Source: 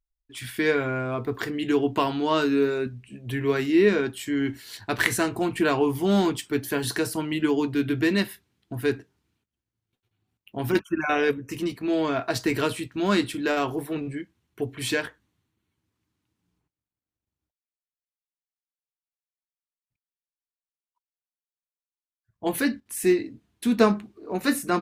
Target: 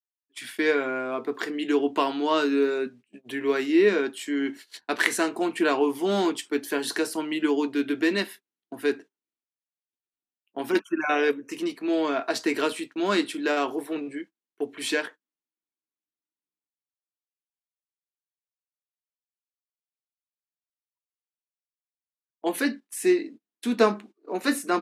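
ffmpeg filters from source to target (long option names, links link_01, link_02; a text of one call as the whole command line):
ffmpeg -i in.wav -af "lowpass=11000,agate=range=-22dB:threshold=-40dB:ratio=16:detection=peak,highpass=frequency=250:width=0.5412,highpass=frequency=250:width=1.3066" out.wav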